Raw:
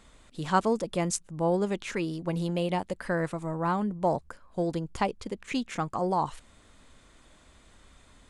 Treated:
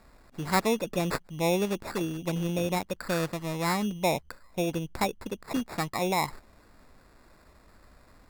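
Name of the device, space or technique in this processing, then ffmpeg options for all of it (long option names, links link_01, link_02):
crushed at another speed: -af "asetrate=35280,aresample=44100,acrusher=samples=18:mix=1:aa=0.000001,asetrate=55125,aresample=44100,deesser=0.35"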